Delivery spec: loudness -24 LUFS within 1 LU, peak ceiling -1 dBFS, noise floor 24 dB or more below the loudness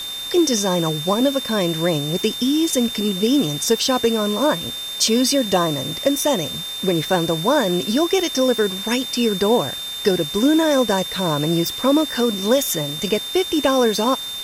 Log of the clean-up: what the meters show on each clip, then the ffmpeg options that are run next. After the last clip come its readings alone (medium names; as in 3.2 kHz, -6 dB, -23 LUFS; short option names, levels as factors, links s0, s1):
steady tone 3.6 kHz; tone level -27 dBFS; noise floor -29 dBFS; noise floor target -43 dBFS; loudness -19.0 LUFS; peak level -3.5 dBFS; loudness target -24.0 LUFS
-> -af "bandreject=f=3600:w=30"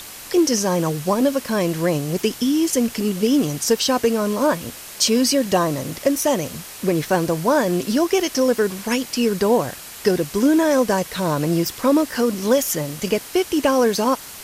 steady tone not found; noise floor -37 dBFS; noise floor target -44 dBFS
-> -af "afftdn=nr=7:nf=-37"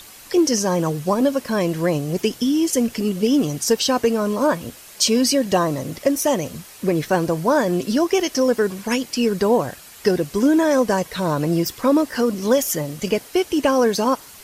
noise floor -43 dBFS; noise floor target -44 dBFS
-> -af "afftdn=nr=6:nf=-43"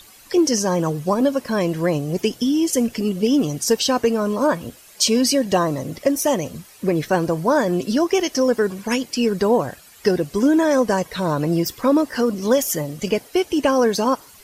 noise floor -47 dBFS; loudness -20.0 LUFS; peak level -3.5 dBFS; loudness target -24.0 LUFS
-> -af "volume=0.631"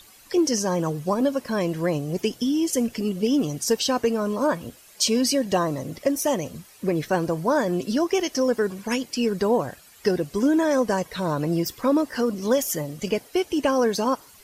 loudness -24.0 LUFS; peak level -7.5 dBFS; noise floor -51 dBFS